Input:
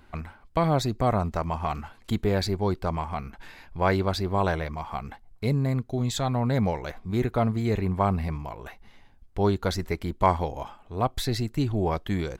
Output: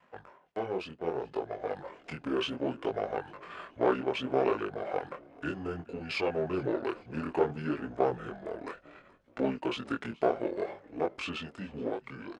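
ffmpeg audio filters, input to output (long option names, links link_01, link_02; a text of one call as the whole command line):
ffmpeg -i in.wav -filter_complex "[0:a]aeval=exprs='if(lt(val(0),0),0.447*val(0),val(0))':channel_layout=same,tremolo=f=1.6:d=0.34,adynamicequalizer=threshold=0.00447:dfrequency=580:dqfactor=3.6:tfrequency=580:tqfactor=3.6:attack=5:release=100:ratio=0.375:range=4:mode=boostabove:tftype=bell,asetrate=29433,aresample=44100,atempo=1.49831,crystalizer=i=6:c=0,acompressor=threshold=-41dB:ratio=1.5,highpass=250,lowpass=2100,dynaudnorm=framelen=530:gausssize=7:maxgain=7dB,asplit=4[link_01][link_02][link_03][link_04];[link_02]adelay=425,afreqshift=-54,volume=-23dB[link_05];[link_03]adelay=850,afreqshift=-108,volume=-30.3dB[link_06];[link_04]adelay=1275,afreqshift=-162,volume=-37.7dB[link_07];[link_01][link_05][link_06][link_07]amix=inputs=4:normalize=0,flanger=delay=19.5:depth=6.9:speed=0.64,volume=2.5dB" out.wav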